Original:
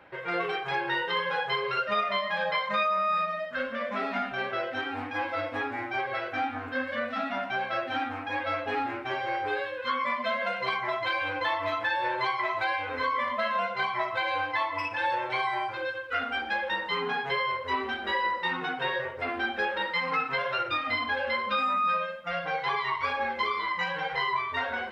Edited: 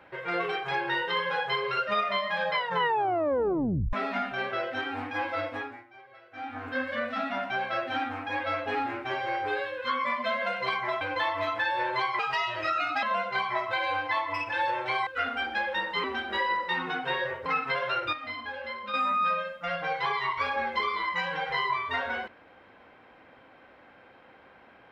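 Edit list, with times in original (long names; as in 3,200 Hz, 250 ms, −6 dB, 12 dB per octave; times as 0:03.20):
0:02.54: tape stop 1.39 s
0:05.44–0:06.70: duck −21 dB, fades 0.40 s
0:11.01–0:11.26: remove
0:12.44–0:13.47: play speed 123%
0:15.51–0:16.02: remove
0:16.99–0:17.78: remove
0:19.20–0:20.09: remove
0:20.76–0:21.57: clip gain −8 dB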